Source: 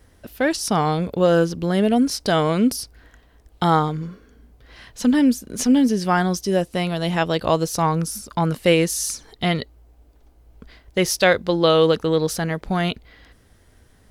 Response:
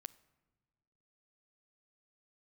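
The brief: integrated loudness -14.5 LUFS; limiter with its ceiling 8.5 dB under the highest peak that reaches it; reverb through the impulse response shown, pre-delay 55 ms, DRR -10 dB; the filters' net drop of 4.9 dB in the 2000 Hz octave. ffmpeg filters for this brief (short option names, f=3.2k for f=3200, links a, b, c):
-filter_complex "[0:a]equalizer=f=2k:t=o:g=-6.5,alimiter=limit=-13.5dB:level=0:latency=1,asplit=2[a][b];[1:a]atrim=start_sample=2205,adelay=55[c];[b][c]afir=irnorm=-1:irlink=0,volume=15.5dB[d];[a][d]amix=inputs=2:normalize=0,volume=-0.5dB"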